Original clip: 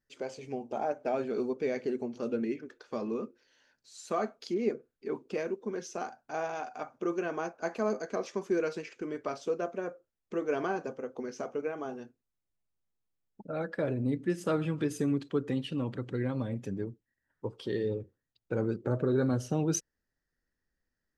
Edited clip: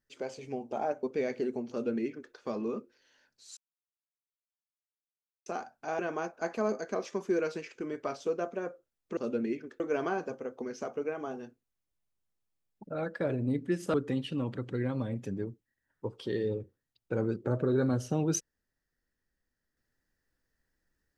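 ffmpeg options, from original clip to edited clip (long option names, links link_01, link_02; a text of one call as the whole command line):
ffmpeg -i in.wav -filter_complex "[0:a]asplit=8[link_01][link_02][link_03][link_04][link_05][link_06][link_07][link_08];[link_01]atrim=end=1.032[link_09];[link_02]atrim=start=1.488:end=4.03,asetpts=PTS-STARTPTS,afade=type=out:start_time=2.538:duration=0.004:curve=hsin[link_10];[link_03]atrim=start=4.03:end=5.92,asetpts=PTS-STARTPTS,volume=0[link_11];[link_04]atrim=start=5.92:end=6.452,asetpts=PTS-STARTPTS,afade=type=in:duration=0.004:curve=hsin[link_12];[link_05]atrim=start=7.198:end=10.382[link_13];[link_06]atrim=start=2.158:end=2.792[link_14];[link_07]atrim=start=10.378:end=14.522[link_15];[link_08]atrim=start=15.338[link_16];[link_10][link_11][link_12]concat=n=3:v=0:a=1[link_17];[link_09][link_17]acrossfade=duration=0.004:curve1=hsin:curve2=hsin[link_18];[link_18][link_13]acrossfade=duration=0.004:curve1=hsin:curve2=hsin[link_19];[link_19][link_14]acrossfade=duration=0.004:curve1=hsin:curve2=hsin[link_20];[link_20][link_15]acrossfade=duration=0.004:curve1=hsin:curve2=hsin[link_21];[link_21][link_16]acrossfade=duration=0.004:curve1=hsin:curve2=hsin" out.wav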